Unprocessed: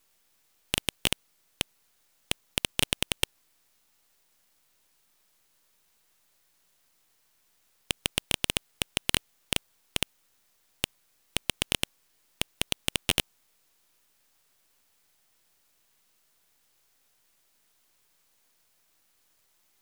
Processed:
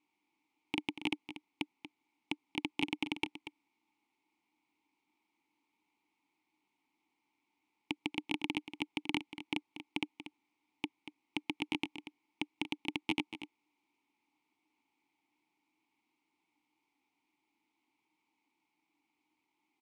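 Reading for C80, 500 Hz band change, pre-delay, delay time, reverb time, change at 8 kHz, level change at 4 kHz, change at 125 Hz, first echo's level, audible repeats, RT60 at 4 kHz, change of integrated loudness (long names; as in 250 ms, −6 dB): no reverb audible, −8.0 dB, no reverb audible, 236 ms, no reverb audible, −25.0 dB, −12.5 dB, −13.5 dB, −12.0 dB, 1, no reverb audible, −9.0 dB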